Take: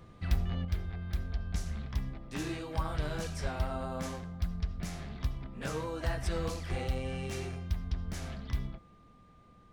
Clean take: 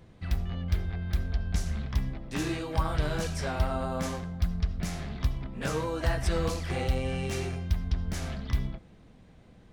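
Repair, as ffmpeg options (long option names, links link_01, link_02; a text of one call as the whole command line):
ffmpeg -i in.wav -filter_complex "[0:a]bandreject=frequency=1200:width=30,asplit=3[link_01][link_02][link_03];[link_01]afade=type=out:start_time=3.42:duration=0.02[link_04];[link_02]highpass=frequency=140:width=0.5412,highpass=frequency=140:width=1.3066,afade=type=in:start_time=3.42:duration=0.02,afade=type=out:start_time=3.54:duration=0.02[link_05];[link_03]afade=type=in:start_time=3.54:duration=0.02[link_06];[link_04][link_05][link_06]amix=inputs=3:normalize=0,asplit=3[link_07][link_08][link_09];[link_07]afade=type=out:start_time=6.7:duration=0.02[link_10];[link_08]highpass=frequency=140:width=0.5412,highpass=frequency=140:width=1.3066,afade=type=in:start_time=6.7:duration=0.02,afade=type=out:start_time=6.82:duration=0.02[link_11];[link_09]afade=type=in:start_time=6.82:duration=0.02[link_12];[link_10][link_11][link_12]amix=inputs=3:normalize=0,asetnsamples=nb_out_samples=441:pad=0,asendcmd='0.65 volume volume 5.5dB',volume=0dB" out.wav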